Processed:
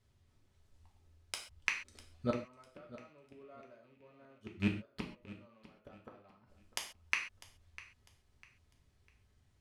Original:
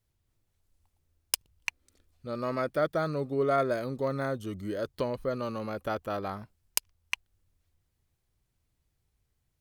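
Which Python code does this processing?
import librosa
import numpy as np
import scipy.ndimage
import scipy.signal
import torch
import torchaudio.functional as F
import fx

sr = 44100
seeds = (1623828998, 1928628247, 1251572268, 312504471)

y = fx.rattle_buzz(x, sr, strikes_db=-40.0, level_db=-30.0)
y = fx.dynamic_eq(y, sr, hz=960.0, q=1.2, threshold_db=-44.0, ratio=4.0, max_db=5)
y = fx.gate_flip(y, sr, shuts_db=-27.0, range_db=-39)
y = fx.air_absorb(y, sr, metres=57.0)
y = fx.echo_feedback(y, sr, ms=650, feedback_pct=31, wet_db=-17.5)
y = fx.rev_gated(y, sr, seeds[0], gate_ms=160, shape='falling', drr_db=0.5)
y = F.gain(torch.from_numpy(y), 4.5).numpy()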